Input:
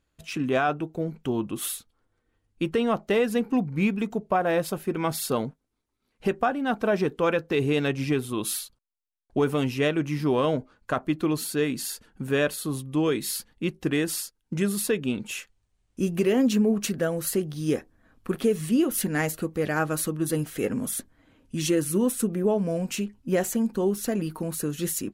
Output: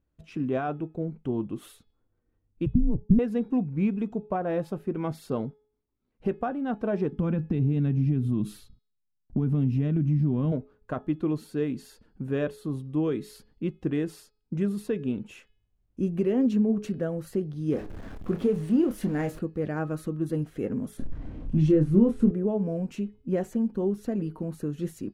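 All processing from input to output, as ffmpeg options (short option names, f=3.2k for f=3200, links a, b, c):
-filter_complex "[0:a]asettb=1/sr,asplit=3[a][b][c];[a]atrim=end=2.664[d];[b]atrim=start=2.66:end=3.19,asetpts=PTS-STARTPTS,afade=t=in:d=0.004:c=qsin,afade=t=out:st=0.526:d=0.004:c=qsin,agate=range=-33dB:threshold=-45dB:ratio=3:release=100:detection=peak,lowpass=f=360:t=q:w=3.5,afreqshift=-210[e];[c]atrim=start=3.186[f];[d][e]acrossfade=d=0.004:c1=hsin:c2=qsin[g];[g][f]acrossfade=d=0.004:c1=qsin:c2=hsin,asettb=1/sr,asplit=3[h][i][j];[h]atrim=end=7.124[k];[i]atrim=start=7.12:end=10.52,asetpts=PTS-STARTPTS,afade=t=in:d=0.004:c=qsin,afade=t=out:st=3.396:d=0.004:c=qsin,lowshelf=f=310:t=q:w=1.5:g=13,acompressor=threshold=-21dB:ratio=4:attack=3.2:release=140:knee=1:detection=peak[l];[j]atrim=start=10.516[m];[k][l]acrossfade=d=0.004:c1=hsin:c2=qsin[n];[n][m]acrossfade=d=0.004:c1=qsin:c2=hsin,asettb=1/sr,asplit=3[o][p][q];[o]atrim=end=17.724[r];[p]atrim=start=17.72:end=19.39,asetpts=PTS-STARTPTS,afade=t=in:d=0.004:c=qsin,afade=t=out:st=1.666:d=0.004:c=qsin,aeval=exprs='val(0)+0.5*0.0266*sgn(val(0))':c=same,asplit=2[s][t];[t]adelay=29,volume=-9.5dB[u];[s][u]amix=inputs=2:normalize=0,atrim=end_sample=73647[v];[q]atrim=start=19.386[w];[r][v]acrossfade=d=0.004:c1=hsin:c2=qsin[x];[x][w]acrossfade=d=0.004:c1=qsin:c2=hsin,asettb=1/sr,asplit=3[y][z][aa];[y]atrim=end=20.974[ab];[z]atrim=start=20.97:end=22.31,asetpts=PTS-STARTPTS,afade=t=in:d=0.004:c=qsin,afade=t=out:st=1.336:d=0.004:c=qsin,aeval=exprs='val(0)+0.5*0.0106*sgn(val(0))':c=same,aemphasis=mode=reproduction:type=bsi,asplit=2[ac][ad];[ad]adelay=26,volume=-5.5dB[ae];[ac][ae]amix=inputs=2:normalize=0,atrim=end_sample=59094[af];[aa]atrim=start=22.306[ag];[ab][af]acrossfade=d=0.004:c1=hsin:c2=qsin[ah];[ah][ag]acrossfade=d=0.004:c1=qsin:c2=hsin,lowpass=f=2.9k:p=1,tiltshelf=f=730:g=6,bandreject=f=424.5:t=h:w=4,bandreject=f=849:t=h:w=4,bandreject=f=1.2735k:t=h:w=4,bandreject=f=1.698k:t=h:w=4,bandreject=f=2.1225k:t=h:w=4,bandreject=f=2.547k:t=h:w=4,bandreject=f=2.9715k:t=h:w=4,bandreject=f=3.396k:t=h:w=4,bandreject=f=3.8205k:t=h:w=4,bandreject=f=4.245k:t=h:w=4,bandreject=f=4.6695k:t=h:w=4,bandreject=f=5.094k:t=h:w=4,volume=-6dB"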